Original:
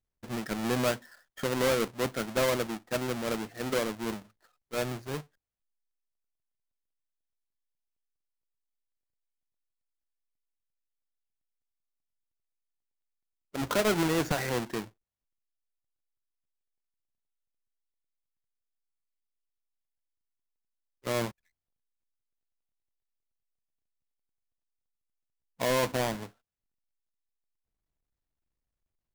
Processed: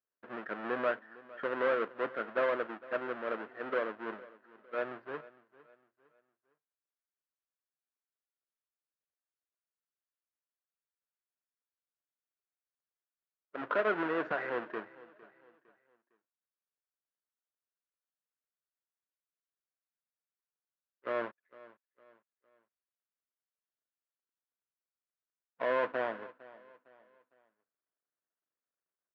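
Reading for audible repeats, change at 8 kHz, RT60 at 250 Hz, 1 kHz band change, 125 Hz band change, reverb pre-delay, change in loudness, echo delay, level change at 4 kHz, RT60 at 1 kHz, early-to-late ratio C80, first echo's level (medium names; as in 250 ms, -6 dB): 2, under -35 dB, no reverb, -2.0 dB, -21.0 dB, no reverb, -4.5 dB, 457 ms, -15.5 dB, no reverb, no reverb, -20.0 dB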